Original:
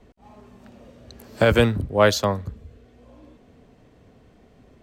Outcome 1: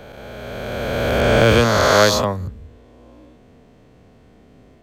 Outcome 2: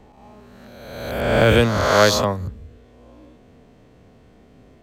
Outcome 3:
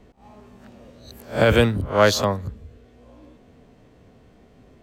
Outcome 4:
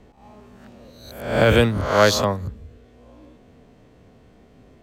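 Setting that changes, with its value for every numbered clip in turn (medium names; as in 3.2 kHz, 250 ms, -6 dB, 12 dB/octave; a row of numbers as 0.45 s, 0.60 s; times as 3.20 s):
reverse spectral sustain, rising 60 dB in: 3 s, 1.37 s, 0.3 s, 0.64 s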